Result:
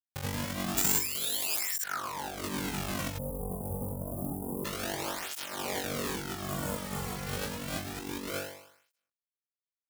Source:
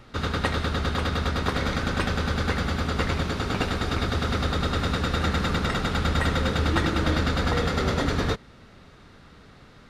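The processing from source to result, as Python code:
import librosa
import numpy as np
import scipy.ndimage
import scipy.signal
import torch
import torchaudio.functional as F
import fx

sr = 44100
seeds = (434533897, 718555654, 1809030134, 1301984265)

y = fx.rattle_buzz(x, sr, strikes_db=-32.0, level_db=-27.0)
y = fx.hum_notches(y, sr, base_hz=60, count=2)
y = fx.schmitt(y, sr, flips_db=-20.0)
y = fx.spec_paint(y, sr, seeds[0], shape='fall', start_s=0.99, length_s=1.38, low_hz=660.0, high_hz=5400.0, level_db=-36.0)
y = fx.tilt_eq(y, sr, slope=2.0)
y = fx.room_flutter(y, sr, wall_m=3.6, rt60_s=0.78)
y = fx.over_compress(y, sr, threshold_db=-29.0, ratio=-0.5)
y = fx.resample_bad(y, sr, factor=6, down='none', up='zero_stuff', at=(0.77, 1.84))
y = fx.cheby2_bandstop(y, sr, low_hz=2100.0, high_hz=4500.0, order=4, stop_db=70, at=(3.17, 4.64), fade=0.02)
y = fx.spec_repair(y, sr, seeds[1], start_s=6.4, length_s=0.79, low_hz=1500.0, high_hz=6500.0, source='both')
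y = fx.flanger_cancel(y, sr, hz=0.28, depth_ms=3.4)
y = F.gain(torch.from_numpy(y), -2.5).numpy()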